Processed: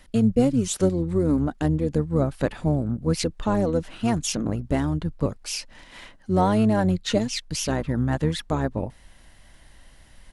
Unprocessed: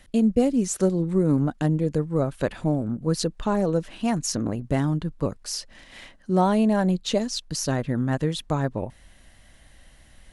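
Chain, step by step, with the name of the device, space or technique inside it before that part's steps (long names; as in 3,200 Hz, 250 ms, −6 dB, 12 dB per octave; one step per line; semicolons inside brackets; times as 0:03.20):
octave pedal (pitch-shifted copies added −12 semitones −7 dB)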